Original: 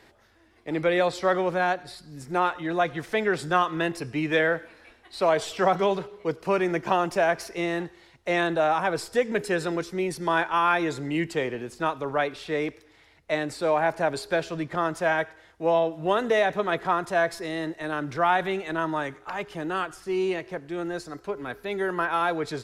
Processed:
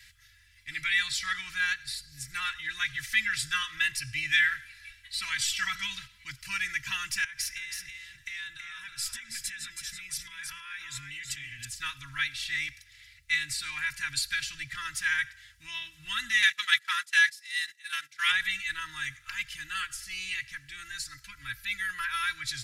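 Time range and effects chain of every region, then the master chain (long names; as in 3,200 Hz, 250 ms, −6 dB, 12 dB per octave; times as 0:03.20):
0:07.24–0:11.65: notch filter 4,400 Hz, Q 15 + downward compressor 16 to 1, threshold −33 dBFS + single-tap delay 325 ms −5.5 dB
0:16.42–0:18.32: noise gate −30 dBFS, range −23 dB + high-pass filter 430 Hz 6 dB per octave + tilt shelving filter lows −9 dB, about 820 Hz
whole clip: Chebyshev band-stop filter 140–1,800 Hz, order 3; high-shelf EQ 2,800 Hz +7.5 dB; comb filter 3 ms, depth 91%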